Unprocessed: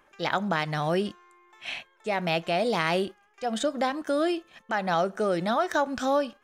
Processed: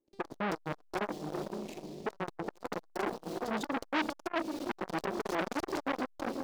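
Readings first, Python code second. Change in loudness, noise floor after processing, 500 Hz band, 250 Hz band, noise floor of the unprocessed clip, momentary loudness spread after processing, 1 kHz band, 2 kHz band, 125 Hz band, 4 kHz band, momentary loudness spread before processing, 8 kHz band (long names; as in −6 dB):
−9.0 dB, −61 dBFS, −10.5 dB, −6.5 dB, −64 dBFS, 7 LU, −9.0 dB, −8.0 dB, −11.0 dB, −11.0 dB, 10 LU, −7.0 dB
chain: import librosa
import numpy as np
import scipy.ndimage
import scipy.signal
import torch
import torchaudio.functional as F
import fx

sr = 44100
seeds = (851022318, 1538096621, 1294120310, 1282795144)

p1 = fx.wiener(x, sr, points=15)
p2 = (np.mod(10.0 ** (21.0 / 20.0) * p1 + 1.0, 2.0) - 1.0) / 10.0 ** (21.0 / 20.0)
p3 = fx.bass_treble(p2, sr, bass_db=-12, treble_db=-14)
p4 = p3 + fx.echo_diffused(p3, sr, ms=464, feedback_pct=40, wet_db=-14, dry=0)
p5 = fx.leveller(p4, sr, passes=5)
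p6 = fx.curve_eq(p5, sr, hz=(130.0, 320.0, 1400.0, 4700.0, 8500.0), db=(0, 8, -29, -3, -6))
p7 = fx.transformer_sat(p6, sr, knee_hz=1900.0)
y = p7 * 10.0 ** (-5.0 / 20.0)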